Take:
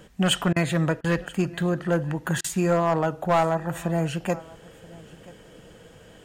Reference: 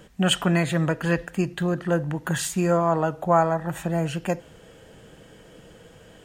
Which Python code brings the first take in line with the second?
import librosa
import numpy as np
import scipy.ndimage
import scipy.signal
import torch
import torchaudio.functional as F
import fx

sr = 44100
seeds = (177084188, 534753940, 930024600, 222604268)

y = fx.fix_declip(x, sr, threshold_db=-14.5)
y = fx.fix_interpolate(y, sr, at_s=(0.53, 1.01, 2.41), length_ms=31.0)
y = fx.fix_echo_inverse(y, sr, delay_ms=981, level_db=-22.5)